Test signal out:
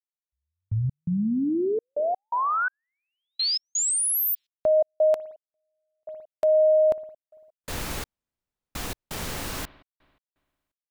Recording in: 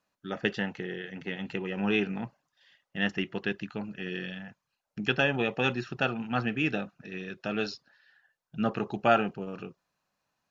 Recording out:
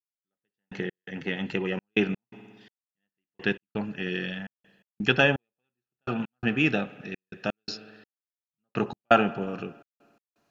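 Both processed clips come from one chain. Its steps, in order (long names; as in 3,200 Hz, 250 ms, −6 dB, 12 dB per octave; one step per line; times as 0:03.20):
spring reverb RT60 1.7 s, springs 56 ms, chirp 45 ms, DRR 17.5 dB
gate pattern "....x.xxxx.x.xx" 84 BPM −60 dB
level +5 dB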